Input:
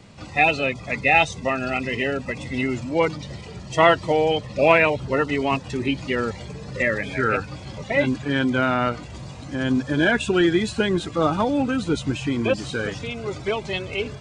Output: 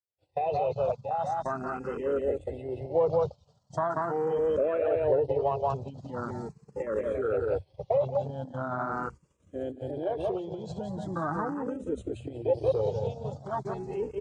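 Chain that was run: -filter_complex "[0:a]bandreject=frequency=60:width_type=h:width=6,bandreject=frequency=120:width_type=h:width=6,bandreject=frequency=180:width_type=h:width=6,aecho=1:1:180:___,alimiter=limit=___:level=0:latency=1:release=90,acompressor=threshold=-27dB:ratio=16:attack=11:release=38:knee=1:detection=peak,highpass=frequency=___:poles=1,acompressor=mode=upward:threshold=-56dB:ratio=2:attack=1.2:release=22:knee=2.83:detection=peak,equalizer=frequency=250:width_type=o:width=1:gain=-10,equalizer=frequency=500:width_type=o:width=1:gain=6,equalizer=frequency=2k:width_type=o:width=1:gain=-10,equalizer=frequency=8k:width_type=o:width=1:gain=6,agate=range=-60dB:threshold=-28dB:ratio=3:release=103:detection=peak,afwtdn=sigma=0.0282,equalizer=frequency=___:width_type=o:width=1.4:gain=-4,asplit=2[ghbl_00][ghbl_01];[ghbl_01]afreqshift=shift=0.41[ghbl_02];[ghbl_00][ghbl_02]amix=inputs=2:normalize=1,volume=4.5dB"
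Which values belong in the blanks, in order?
0.531, -11.5dB, 50, 7.4k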